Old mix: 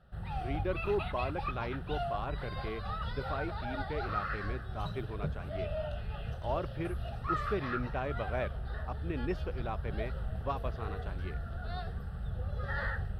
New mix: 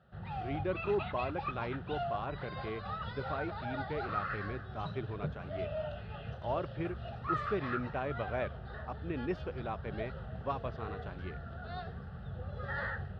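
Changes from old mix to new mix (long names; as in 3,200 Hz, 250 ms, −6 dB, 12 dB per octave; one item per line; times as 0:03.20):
background: add band-pass filter 100–5,800 Hz
master: add high-frequency loss of the air 88 metres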